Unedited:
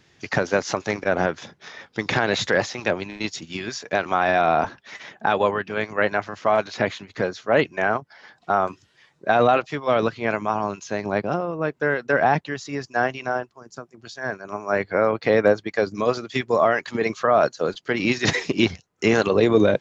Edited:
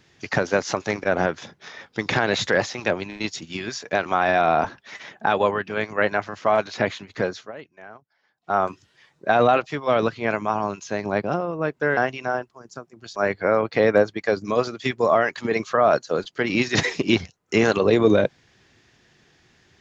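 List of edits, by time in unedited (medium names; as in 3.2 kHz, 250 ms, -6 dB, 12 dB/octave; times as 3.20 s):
7.39–8.56 s: dip -21 dB, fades 0.13 s
11.97–12.98 s: delete
14.17–14.66 s: delete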